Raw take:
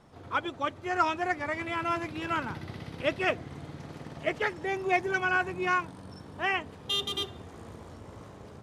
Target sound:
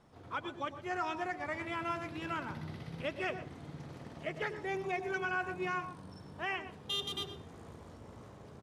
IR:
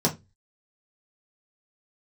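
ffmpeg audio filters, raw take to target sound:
-filter_complex "[0:a]alimiter=limit=-20dB:level=0:latency=1:release=157,asplit=2[link_01][link_02];[link_02]adelay=122.4,volume=-15dB,highshelf=frequency=4000:gain=-2.76[link_03];[link_01][link_03]amix=inputs=2:normalize=0,asplit=2[link_04][link_05];[1:a]atrim=start_sample=2205,adelay=99[link_06];[link_05][link_06]afir=irnorm=-1:irlink=0,volume=-25.5dB[link_07];[link_04][link_07]amix=inputs=2:normalize=0,volume=-6dB"

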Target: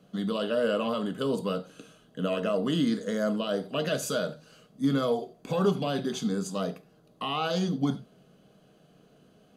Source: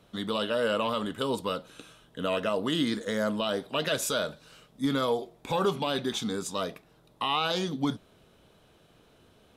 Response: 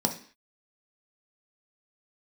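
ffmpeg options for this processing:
-filter_complex "[0:a]asplit=2[link_01][link_02];[1:a]atrim=start_sample=2205,afade=type=out:start_time=0.13:duration=0.01,atrim=end_sample=6174,asetrate=36162,aresample=44100[link_03];[link_02][link_03]afir=irnorm=-1:irlink=0,volume=-8.5dB[link_04];[link_01][link_04]amix=inputs=2:normalize=0,volume=-7.5dB"

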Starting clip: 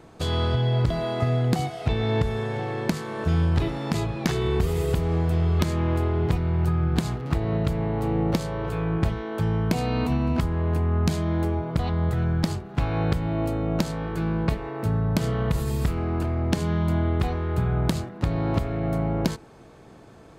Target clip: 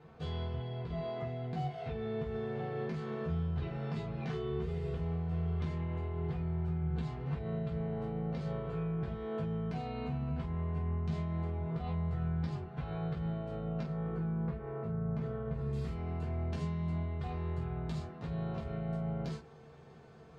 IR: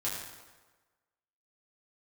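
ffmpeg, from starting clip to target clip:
-filter_complex "[0:a]asetnsamples=nb_out_samples=441:pad=0,asendcmd='13.82 lowpass f 1700;15.73 lowpass f 5600',lowpass=3400,alimiter=limit=-23dB:level=0:latency=1:release=158[link_01];[1:a]atrim=start_sample=2205,atrim=end_sample=3969,asetrate=66150,aresample=44100[link_02];[link_01][link_02]afir=irnorm=-1:irlink=0,volume=-7dB"

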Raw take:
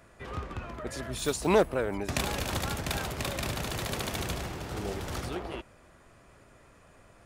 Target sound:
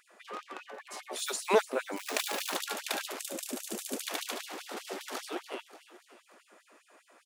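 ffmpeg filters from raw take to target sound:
ffmpeg -i in.wav -filter_complex "[0:a]asplit=2[link_01][link_02];[link_02]aecho=0:1:291|582|873|1164|1455:0.178|0.0978|0.0538|0.0296|0.0163[link_03];[link_01][link_03]amix=inputs=2:normalize=0,asettb=1/sr,asplit=3[link_04][link_05][link_06];[link_04]atrim=end=0.664[link_07];[link_05]atrim=start=0.66:end=1.16,asetpts=PTS-STARTPTS,afade=type=in:duration=0.004:curve=qsin,afade=type=out:start_time=0.496:duration=0.004:curve=qsin,aeval=exprs='val(0)*sin(2*PI*490*n/s)':channel_layout=same[link_08];[link_06]atrim=start=1.156[link_09];[link_07][link_08]acrossfade=duration=0.004:curve1=hsin:curve2=qsin[link_10];[link_10][link_09]acrossfade=duration=0.004:curve1=qsin:curve2=hsin,asettb=1/sr,asplit=3[link_11][link_12][link_13];[link_11]atrim=end=1.964[link_14];[link_12]atrim=start=1.96:end=2.56,asetpts=PTS-STARTPTS,afade=type=in:duration=0.004:curve=qsin,afade=type=out:start_time=0.596:duration=0.004:curve=qsin,acrusher=bits=7:dc=4:mix=0:aa=0.000001[link_15];[link_13]atrim=start=2.556[link_16];[link_14][link_15]acrossfade=duration=0.004:curve1=hsin:curve2=qsin[link_17];[link_17][link_16]acrossfade=duration=0.004:curve1=qsin:curve2=hsin,asettb=1/sr,asplit=3[link_18][link_19][link_20];[link_18]atrim=end=3.194[link_21];[link_19]atrim=start=3.19:end=4.02,asetpts=PTS-STARTPTS,afade=type=in:duration=0.004:curve=qsin,afade=type=out:start_time=0.826:duration=0.004:curve=qsin,equalizer=frequency=125:width_type=o:width=1:gain=11,equalizer=frequency=250:width_type=o:width=1:gain=7,equalizer=frequency=1000:width_type=o:width=1:gain=-10,equalizer=frequency=2000:width_type=o:width=1:gain=-8,equalizer=frequency=4000:width_type=o:width=1:gain=-7,equalizer=frequency=8000:width_type=o:width=1:gain=4[link_22];[link_20]atrim=start=4.016[link_23];[link_21][link_22]acrossfade=duration=0.004:curve1=hsin:curve2=qsin[link_24];[link_24][link_23]acrossfade=duration=0.004:curve1=qsin:curve2=hsin,afftfilt=real='re*gte(b*sr/1024,200*pow(2900/200,0.5+0.5*sin(2*PI*5*pts/sr)))':imag='im*gte(b*sr/1024,200*pow(2900/200,0.5+0.5*sin(2*PI*5*pts/sr)))':win_size=1024:overlap=0.75" out.wav

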